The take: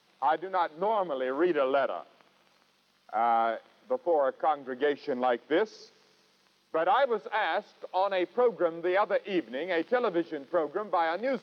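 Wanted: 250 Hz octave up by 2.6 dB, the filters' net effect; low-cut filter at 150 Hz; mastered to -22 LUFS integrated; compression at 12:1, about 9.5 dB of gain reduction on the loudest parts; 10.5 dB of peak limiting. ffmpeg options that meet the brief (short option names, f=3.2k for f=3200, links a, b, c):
-af "highpass=150,equalizer=f=250:t=o:g=4.5,acompressor=threshold=-30dB:ratio=12,volume=18dB,alimiter=limit=-12.5dB:level=0:latency=1"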